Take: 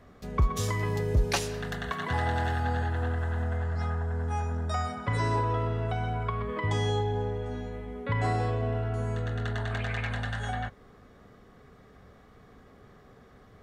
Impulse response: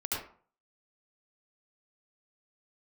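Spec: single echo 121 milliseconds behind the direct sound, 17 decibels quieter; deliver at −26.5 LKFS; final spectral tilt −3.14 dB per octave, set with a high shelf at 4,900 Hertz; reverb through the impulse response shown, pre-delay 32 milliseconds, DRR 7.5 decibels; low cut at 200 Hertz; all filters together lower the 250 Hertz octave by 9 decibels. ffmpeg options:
-filter_complex "[0:a]highpass=200,equalizer=frequency=250:width_type=o:gain=-9,highshelf=frequency=4900:gain=5.5,aecho=1:1:121:0.141,asplit=2[link_01][link_02];[1:a]atrim=start_sample=2205,adelay=32[link_03];[link_02][link_03]afir=irnorm=-1:irlink=0,volume=-12.5dB[link_04];[link_01][link_04]amix=inputs=2:normalize=0,volume=7.5dB"

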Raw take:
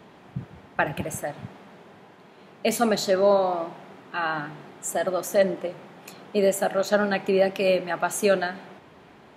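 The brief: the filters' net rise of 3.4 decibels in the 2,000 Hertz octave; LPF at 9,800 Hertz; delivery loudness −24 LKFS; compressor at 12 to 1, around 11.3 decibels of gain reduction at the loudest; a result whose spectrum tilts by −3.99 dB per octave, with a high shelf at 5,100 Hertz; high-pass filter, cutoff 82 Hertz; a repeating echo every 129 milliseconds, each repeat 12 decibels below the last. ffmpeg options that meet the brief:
ffmpeg -i in.wav -af "highpass=82,lowpass=9800,equalizer=frequency=2000:width_type=o:gain=5,highshelf=frequency=5100:gain=-3.5,acompressor=threshold=-26dB:ratio=12,aecho=1:1:129|258|387:0.251|0.0628|0.0157,volume=8.5dB" out.wav

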